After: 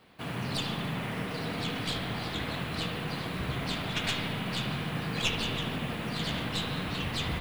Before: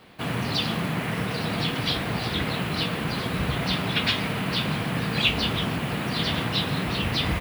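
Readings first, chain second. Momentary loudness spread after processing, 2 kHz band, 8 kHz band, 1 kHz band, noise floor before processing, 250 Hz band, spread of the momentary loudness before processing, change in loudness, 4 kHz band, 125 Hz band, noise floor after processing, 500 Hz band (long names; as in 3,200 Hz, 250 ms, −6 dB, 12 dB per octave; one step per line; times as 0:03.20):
4 LU, −6.5 dB, −3.0 dB, −6.5 dB, −30 dBFS, −7.0 dB, 5 LU, −7.0 dB, −7.0 dB, −6.5 dB, −37 dBFS, −6.5 dB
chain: stylus tracing distortion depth 0.049 ms
bucket-brigade delay 74 ms, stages 2,048, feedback 79%, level −8.5 dB
level −8 dB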